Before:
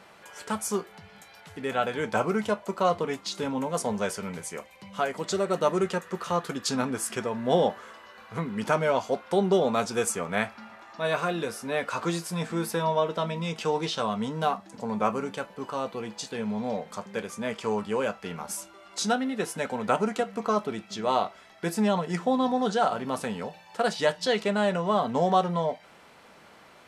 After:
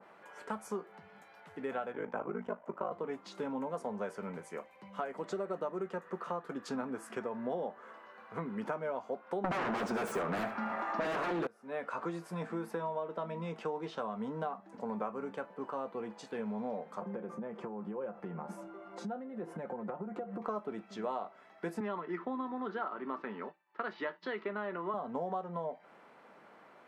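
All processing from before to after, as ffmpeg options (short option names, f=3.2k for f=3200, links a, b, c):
-filter_complex "[0:a]asettb=1/sr,asplit=3[a][b][c];[a]atrim=end=1.924[d];[b]atrim=start=1.92:end=2.92,asetpts=PTS-STARTPTS,afade=t=in:d=0.004:c=qsin,afade=t=out:st=0.996:d=0.004:c=qsin,lowpass=5.7k,aeval=exprs='val(0)*sin(2*PI*26*n/s)':c=same,equalizer=f=4.2k:t=o:w=0.57:g=-11.5[e];[c]atrim=start=2.916[f];[d][e]acrossfade=d=0.004:c1=hsin:c2=qsin[g];[g][f]acrossfade=d=0.004:c1=qsin:c2=hsin,asettb=1/sr,asplit=3[h][i][j];[h]atrim=end=9.444[k];[i]atrim=start=9.44:end=11.47,asetpts=PTS-STARTPTS,afade=t=in:d=0.004:c=qsin,afade=t=out:st=2.026:d=0.004:c=qsin,acontrast=38,aeval=exprs='0.531*sin(PI/2*7.94*val(0)/0.531)':c=same,aecho=1:1:74:0.237,atrim=end_sample=89523[l];[j]atrim=start=11.466[m];[k][l]acrossfade=d=0.004:c1=hsin:c2=qsin[n];[n][m]acrossfade=d=0.004:c1=qsin:c2=hsin,asettb=1/sr,asplit=3[o][p][q];[o]atrim=end=17.014[r];[p]atrim=start=17.01:end=20.42,asetpts=PTS-STARTPTS,afade=t=in:d=0.004:c=qsin,afade=t=out:st=3.406:d=0.004:c=qsin,tiltshelf=f=1.5k:g=9,acompressor=threshold=-32dB:ratio=10:attack=3.2:release=140:knee=1:detection=peak,aecho=1:1:5.7:0.55,atrim=end_sample=150381[s];[q]atrim=start=20.416[t];[r][s]acrossfade=d=0.004:c1=hsin:c2=qsin[u];[u][t]acrossfade=d=0.004:c1=qsin:c2=hsin,asettb=1/sr,asplit=3[v][w][x];[v]atrim=end=21.804[y];[w]atrim=start=21.8:end=24.94,asetpts=PTS-STARTPTS,afade=t=in:d=0.004:c=qsin,afade=t=out:st=3.136:d=0.004:c=qsin,highpass=260,equalizer=f=350:t=q:w=4:g=8,equalizer=f=500:t=q:w=4:g=-9,equalizer=f=730:t=q:w=4:g=-9,equalizer=f=1.2k:t=q:w=4:g=6,equalizer=f=2k:t=q:w=4:g=5,lowpass=f=4.3k:w=0.5412,lowpass=f=4.3k:w=1.3066,agate=range=-33dB:threshold=-41dB:ratio=3:release=100:detection=peak[z];[x]atrim=start=24.936[aa];[y][z]acrossfade=d=0.004:c1=hsin:c2=qsin[ab];[ab][aa]acrossfade=d=0.004:c1=qsin:c2=hsin,acrossover=split=170 2100:gain=0.141 1 0.178[ac][ad][ae];[ac][ad][ae]amix=inputs=3:normalize=0,acompressor=threshold=-30dB:ratio=6,adynamicequalizer=threshold=0.00398:dfrequency=1800:dqfactor=0.7:tfrequency=1800:tqfactor=0.7:attack=5:release=100:ratio=0.375:range=2:mode=cutabove:tftype=highshelf,volume=-3.5dB"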